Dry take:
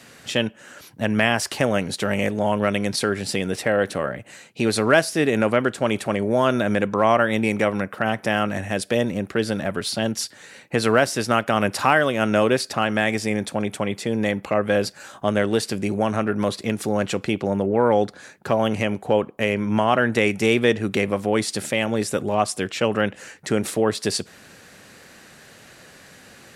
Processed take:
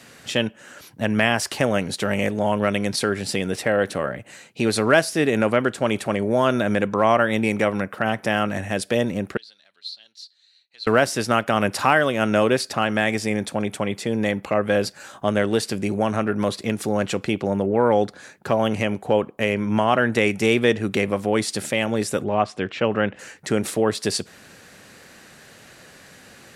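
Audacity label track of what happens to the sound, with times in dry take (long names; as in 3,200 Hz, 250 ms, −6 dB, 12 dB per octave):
9.370000	10.870000	resonant band-pass 4,100 Hz, Q 12
22.240000	23.190000	low-pass filter 3,100 Hz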